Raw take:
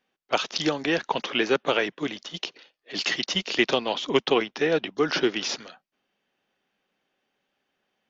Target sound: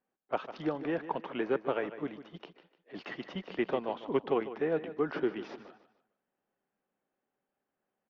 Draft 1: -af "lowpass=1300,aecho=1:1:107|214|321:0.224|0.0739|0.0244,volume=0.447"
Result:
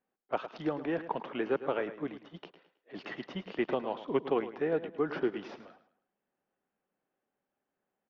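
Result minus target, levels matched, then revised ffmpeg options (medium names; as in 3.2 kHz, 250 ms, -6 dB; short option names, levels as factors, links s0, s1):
echo 43 ms early
-af "lowpass=1300,aecho=1:1:150|300|450:0.224|0.0739|0.0244,volume=0.447"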